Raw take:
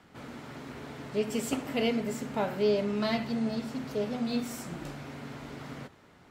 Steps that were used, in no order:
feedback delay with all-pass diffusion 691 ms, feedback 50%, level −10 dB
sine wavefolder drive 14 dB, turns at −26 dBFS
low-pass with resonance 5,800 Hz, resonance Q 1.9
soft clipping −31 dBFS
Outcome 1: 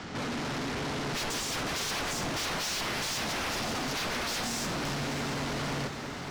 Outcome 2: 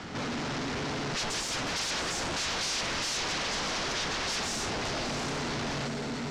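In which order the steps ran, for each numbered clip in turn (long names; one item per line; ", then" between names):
sine wavefolder, then low-pass with resonance, then soft clipping, then feedback delay with all-pass diffusion
feedback delay with all-pass diffusion, then sine wavefolder, then soft clipping, then low-pass with resonance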